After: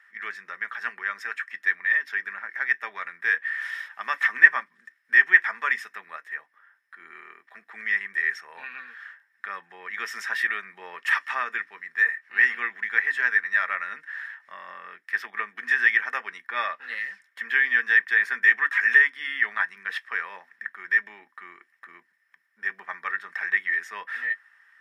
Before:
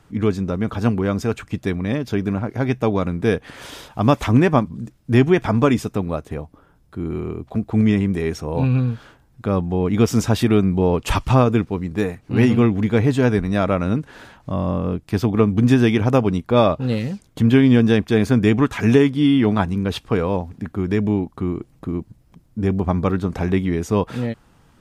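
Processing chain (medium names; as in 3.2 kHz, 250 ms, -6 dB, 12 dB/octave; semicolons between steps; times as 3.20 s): resonant high-pass 1.8 kHz, resonance Q 16; reverberation RT60 0.10 s, pre-delay 3 ms, DRR 10 dB; trim -12.5 dB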